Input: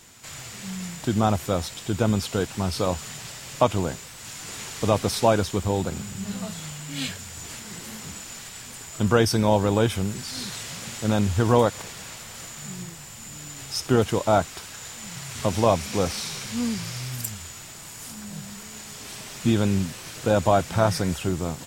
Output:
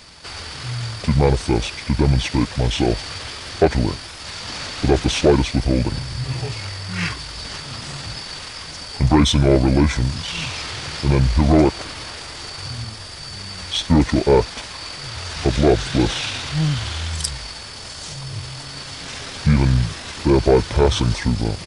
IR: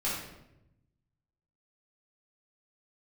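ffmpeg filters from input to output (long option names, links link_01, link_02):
-af "aeval=exprs='0.668*(cos(1*acos(clip(val(0)/0.668,-1,1)))-cos(1*PI/2))+0.0841*(cos(5*acos(clip(val(0)/0.668,-1,1)))-cos(5*PI/2))+0.0106*(cos(6*acos(clip(val(0)/0.668,-1,1)))-cos(6*PI/2))+0.0168*(cos(8*acos(clip(val(0)/0.668,-1,1)))-cos(8*PI/2))':channel_layout=same,asetrate=28595,aresample=44100,atempo=1.54221,volume=3dB"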